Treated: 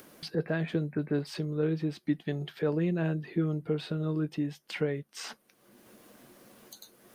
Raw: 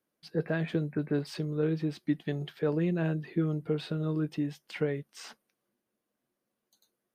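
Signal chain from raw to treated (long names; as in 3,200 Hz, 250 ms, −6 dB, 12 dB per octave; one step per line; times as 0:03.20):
upward compression, threshold −32 dBFS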